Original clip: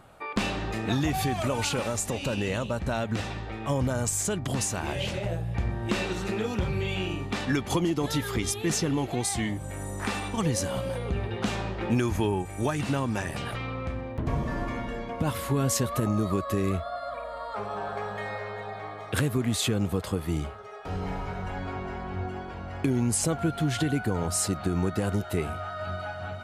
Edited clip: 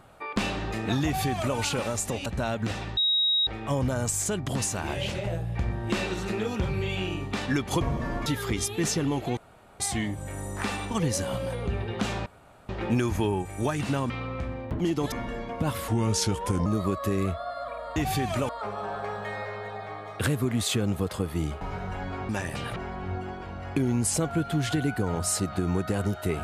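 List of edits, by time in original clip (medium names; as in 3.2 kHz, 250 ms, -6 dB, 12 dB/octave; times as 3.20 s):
1.04–1.57 s: copy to 17.42 s
2.26–2.75 s: delete
3.46 s: add tone 3.8 kHz -20.5 dBFS 0.50 s
7.80–8.12 s: swap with 14.27–14.72 s
9.23 s: insert room tone 0.43 s
11.69 s: insert room tone 0.43 s
13.10–13.57 s: move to 21.84 s
15.48–16.12 s: speed 82%
20.54–21.16 s: delete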